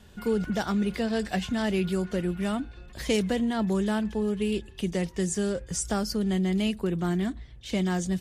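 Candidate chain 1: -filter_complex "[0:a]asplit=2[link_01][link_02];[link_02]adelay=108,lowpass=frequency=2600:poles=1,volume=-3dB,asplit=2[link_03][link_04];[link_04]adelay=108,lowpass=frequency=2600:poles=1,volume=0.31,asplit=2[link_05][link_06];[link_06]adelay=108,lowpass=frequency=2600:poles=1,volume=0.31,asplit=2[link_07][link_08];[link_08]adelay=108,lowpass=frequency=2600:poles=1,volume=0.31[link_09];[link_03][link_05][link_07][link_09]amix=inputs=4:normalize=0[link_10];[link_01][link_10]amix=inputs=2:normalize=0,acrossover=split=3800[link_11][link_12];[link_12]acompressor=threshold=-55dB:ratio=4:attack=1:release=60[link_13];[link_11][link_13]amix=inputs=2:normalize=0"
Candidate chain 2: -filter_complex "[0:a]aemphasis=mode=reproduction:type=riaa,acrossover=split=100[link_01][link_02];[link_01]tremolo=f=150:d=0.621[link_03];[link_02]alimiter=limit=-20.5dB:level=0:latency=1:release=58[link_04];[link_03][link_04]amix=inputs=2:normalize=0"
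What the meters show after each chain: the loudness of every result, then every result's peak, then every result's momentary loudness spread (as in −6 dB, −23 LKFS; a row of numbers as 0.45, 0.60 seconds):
−26.5, −27.0 LKFS; −12.5, −14.5 dBFS; 6, 4 LU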